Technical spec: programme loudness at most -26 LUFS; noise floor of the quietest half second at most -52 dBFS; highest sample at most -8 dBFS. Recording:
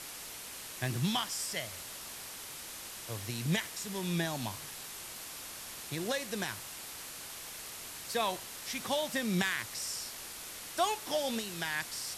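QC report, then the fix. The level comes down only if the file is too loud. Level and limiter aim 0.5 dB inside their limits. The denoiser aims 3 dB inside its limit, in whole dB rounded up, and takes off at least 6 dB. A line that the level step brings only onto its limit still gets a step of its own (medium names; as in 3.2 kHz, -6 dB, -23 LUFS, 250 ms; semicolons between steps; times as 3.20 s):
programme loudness -36.0 LUFS: pass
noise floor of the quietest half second -45 dBFS: fail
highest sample -16.0 dBFS: pass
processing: noise reduction 10 dB, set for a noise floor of -45 dBFS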